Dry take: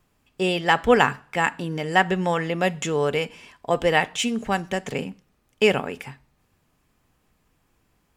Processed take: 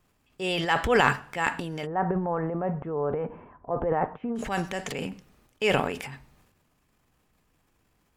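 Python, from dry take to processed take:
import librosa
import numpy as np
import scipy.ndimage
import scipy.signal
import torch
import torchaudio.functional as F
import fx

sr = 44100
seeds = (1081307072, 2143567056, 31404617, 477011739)

y = fx.dynamic_eq(x, sr, hz=210.0, q=0.77, threshold_db=-33.0, ratio=4.0, max_db=-5)
y = fx.transient(y, sr, attack_db=-5, sustain_db=10)
y = fx.lowpass(y, sr, hz=1200.0, slope=24, at=(1.85, 4.35), fade=0.02)
y = y * librosa.db_to_amplitude(-3.0)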